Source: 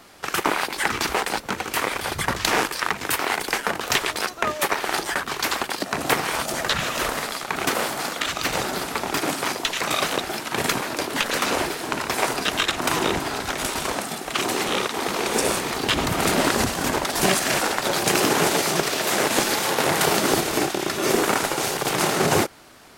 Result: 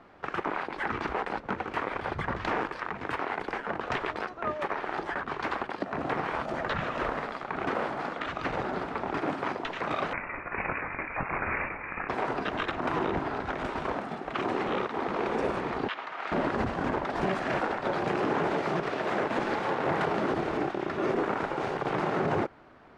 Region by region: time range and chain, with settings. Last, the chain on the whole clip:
10.13–12.09 doubler 21 ms -11.5 dB + inverted band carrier 2700 Hz
15.88–16.32 Bessel high-pass 1400 Hz + air absorption 100 m
whole clip: LPF 1600 Hz 12 dB/oct; limiter -15 dBFS; gain -3.5 dB

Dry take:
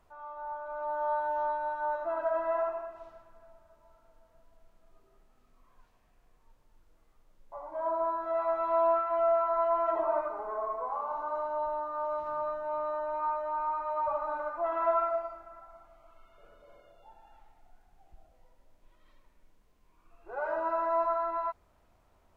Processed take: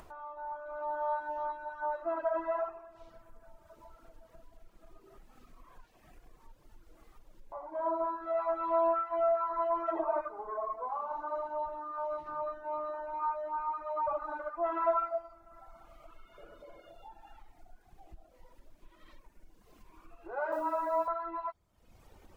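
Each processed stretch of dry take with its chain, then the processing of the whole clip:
20.52–21.08 frequency shift -17 Hz + requantised 10-bit, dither none
whole clip: reverb removal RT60 1.5 s; bell 330 Hz +7 dB 0.24 oct; upward compressor, threshold -43 dBFS

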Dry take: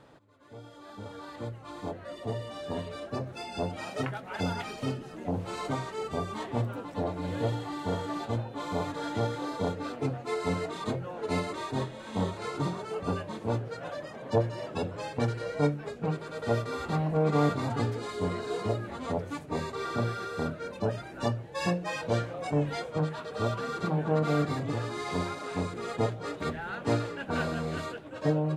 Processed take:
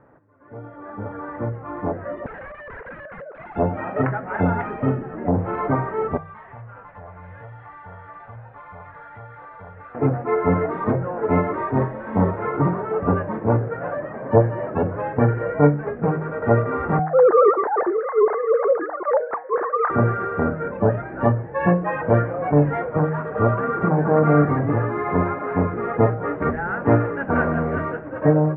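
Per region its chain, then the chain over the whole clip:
2.26–3.56 sine-wave speech + compressor 5:1, threshold -42 dBFS + wrapped overs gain 42 dB
6.17–9.95 passive tone stack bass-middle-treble 10-0-10 + compressor 4:1, threshold -47 dBFS
16.99–19.9 sine-wave speech + LPF 1900 Hz 24 dB/oct
whole clip: steep low-pass 1900 Hz 36 dB/oct; de-hum 157.3 Hz, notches 29; AGC gain up to 9 dB; gain +2.5 dB

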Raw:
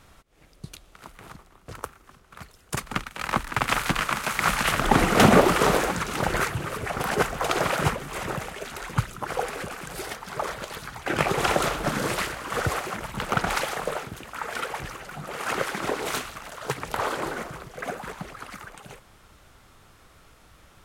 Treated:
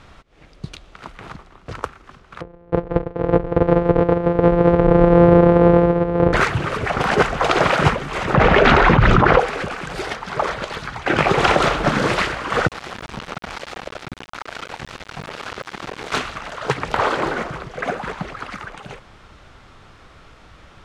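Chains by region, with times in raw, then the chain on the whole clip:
2.41–6.33 sample sorter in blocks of 256 samples + LPF 1100 Hz + bell 460 Hz +14.5 dB 0.44 oct
8.34–9.39 tape spacing loss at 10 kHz 28 dB + fast leveller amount 100%
12.67–16.12 bell 87 Hz +6 dB 1.9 oct + compressor 8:1, threshold -33 dBFS + sample gate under -34 dBFS
whole clip: LPF 4600 Hz 12 dB/oct; maximiser +9.5 dB; gain -1 dB

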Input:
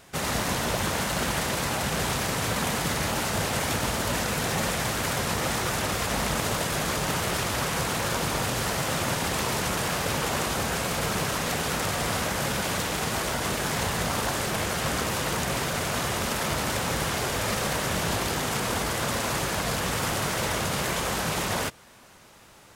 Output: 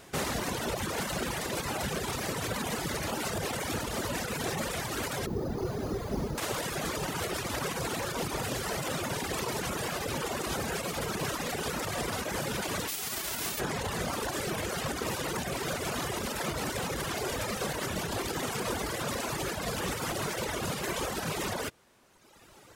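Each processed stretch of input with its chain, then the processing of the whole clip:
5.26–6.38 delta modulation 16 kbps, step -44.5 dBFS + bell 400 Hz +6.5 dB 0.2 oct + careless resampling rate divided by 8×, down none, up hold
12.87–13.59 spectral whitening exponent 0.3 + notch 510 Hz, Q 6.7
whole clip: limiter -21.5 dBFS; reverb removal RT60 1.6 s; bell 370 Hz +5.5 dB 0.97 oct

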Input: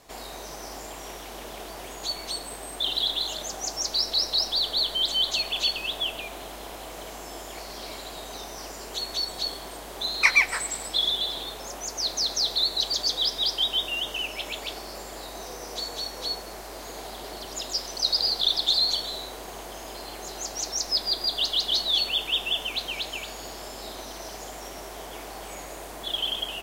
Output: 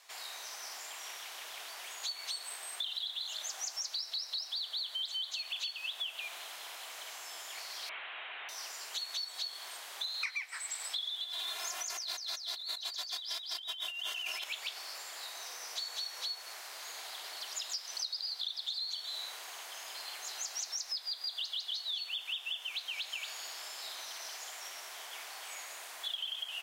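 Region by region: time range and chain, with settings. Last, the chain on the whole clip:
7.89–8.49 delta modulation 16 kbps, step -42 dBFS + high shelf 2400 Hz +12 dB
11.24–14.44 comb 2.9 ms, depth 95% + negative-ratio compressor -34 dBFS + brick-wall FIR high-pass 220 Hz
whole clip: HPF 1500 Hz 12 dB/oct; high shelf 7500 Hz -5.5 dB; compressor 10:1, threshold -35 dBFS

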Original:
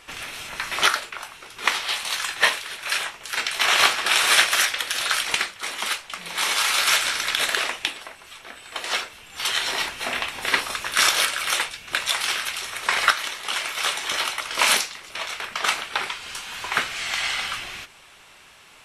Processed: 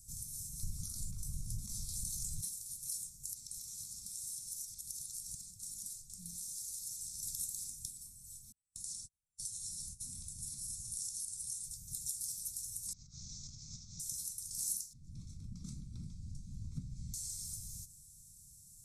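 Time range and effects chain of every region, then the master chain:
0.63–2.41 tilt -2.5 dB/oct + fast leveller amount 70%
3.33–7.23 high shelf 9200 Hz -7 dB + compressor 5:1, threshold -29 dBFS
8.52–11.64 gate -36 dBFS, range -42 dB + compressor 2.5:1, threshold -27 dBFS + careless resampling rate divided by 2×, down none, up filtered
12.93–14 CVSD 32 kbps + negative-ratio compressor -34 dBFS
14.93–17.14 LPF 2400 Hz + resonant low shelf 530 Hz +10.5 dB, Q 3
whole clip: inverse Chebyshev band-stop 370–3100 Hz, stop band 50 dB; compressor 2.5:1, threshold -43 dBFS; gain +2 dB

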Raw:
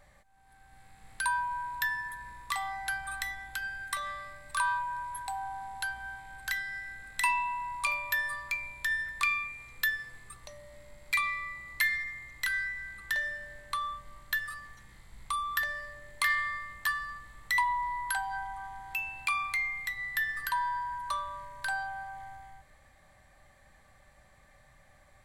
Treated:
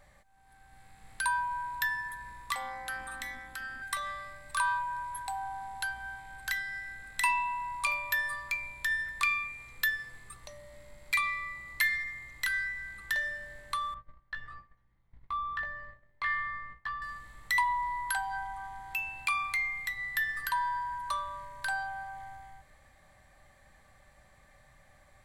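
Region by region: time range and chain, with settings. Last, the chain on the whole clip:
2.54–3.82 transient shaper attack -2 dB, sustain +3 dB + AM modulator 250 Hz, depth 65%
13.94–17.02 gate -46 dBFS, range -17 dB + tape spacing loss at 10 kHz 37 dB + doubler 18 ms -6.5 dB
whole clip: dry

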